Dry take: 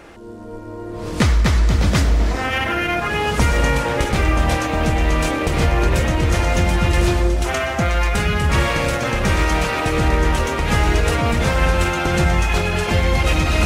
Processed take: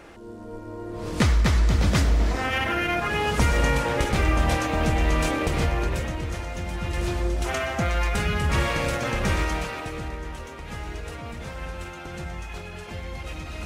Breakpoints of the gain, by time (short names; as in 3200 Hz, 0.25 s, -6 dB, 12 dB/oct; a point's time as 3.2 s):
5.42 s -4.5 dB
6.53 s -15.5 dB
7.49 s -6 dB
9.32 s -6 dB
10.21 s -18 dB